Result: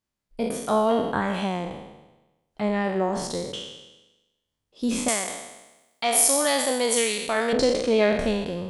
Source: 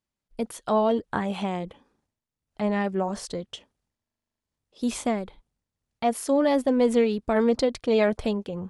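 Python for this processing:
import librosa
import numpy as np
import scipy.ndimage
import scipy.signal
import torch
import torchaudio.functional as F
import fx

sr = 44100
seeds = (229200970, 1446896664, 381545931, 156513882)

y = fx.spec_trails(x, sr, decay_s=1.07)
y = fx.tilt_eq(y, sr, slope=4.5, at=(5.08, 7.53))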